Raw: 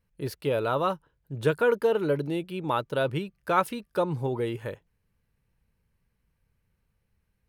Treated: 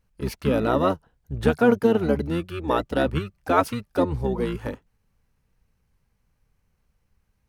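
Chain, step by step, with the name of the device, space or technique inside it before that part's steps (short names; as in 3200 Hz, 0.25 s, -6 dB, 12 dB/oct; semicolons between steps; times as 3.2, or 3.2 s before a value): octave pedal (harmoniser -12 st -1 dB); gain +2 dB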